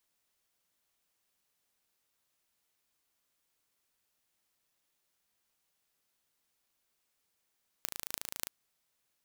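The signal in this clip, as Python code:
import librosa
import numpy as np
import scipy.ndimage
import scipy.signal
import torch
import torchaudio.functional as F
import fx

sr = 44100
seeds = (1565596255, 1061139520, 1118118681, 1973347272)

y = fx.impulse_train(sr, length_s=0.65, per_s=27.4, accent_every=8, level_db=-5.5)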